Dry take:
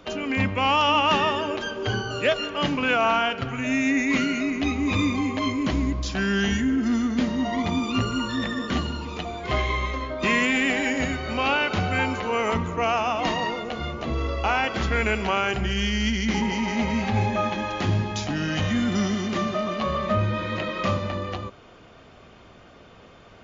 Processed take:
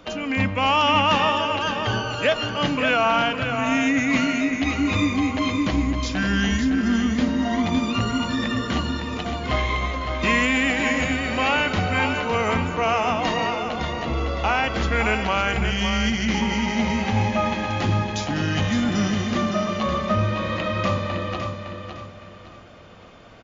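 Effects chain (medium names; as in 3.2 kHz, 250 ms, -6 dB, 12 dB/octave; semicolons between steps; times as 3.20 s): band-stop 390 Hz, Q 12; on a send: feedback delay 560 ms, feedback 33%, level -7 dB; on the sum: trim +1.5 dB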